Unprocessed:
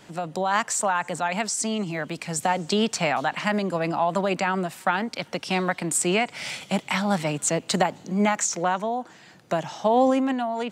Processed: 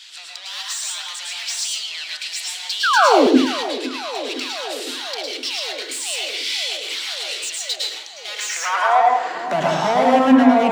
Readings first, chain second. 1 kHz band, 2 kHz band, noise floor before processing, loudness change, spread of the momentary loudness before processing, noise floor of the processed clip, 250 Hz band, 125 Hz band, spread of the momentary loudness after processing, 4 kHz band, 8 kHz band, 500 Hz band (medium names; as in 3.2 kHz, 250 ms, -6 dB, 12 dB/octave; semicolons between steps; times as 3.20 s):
+5.5 dB, +4.5 dB, -50 dBFS, +5.0 dB, 7 LU, -37 dBFS, +5.5 dB, no reading, 13 LU, +10.5 dB, +1.5 dB, +4.0 dB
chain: overdrive pedal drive 31 dB, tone 2.4 kHz, clips at -6 dBFS; high-pass sweep 3.8 kHz -> 170 Hz, 8.27–9.60 s; painted sound fall, 2.83–3.27 s, 230–1700 Hz -9 dBFS; on a send: band-passed feedback delay 511 ms, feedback 84%, band-pass 550 Hz, level -12 dB; on the sum: plate-style reverb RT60 0.63 s, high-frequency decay 0.55×, pre-delay 95 ms, DRR -2.5 dB; trim -8 dB